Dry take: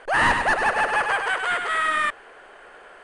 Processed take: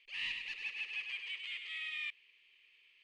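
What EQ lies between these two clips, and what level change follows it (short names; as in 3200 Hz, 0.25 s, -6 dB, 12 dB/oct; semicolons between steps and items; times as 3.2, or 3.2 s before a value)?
elliptic high-pass 2400 Hz, stop band 40 dB; tape spacing loss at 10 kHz 41 dB; +5.0 dB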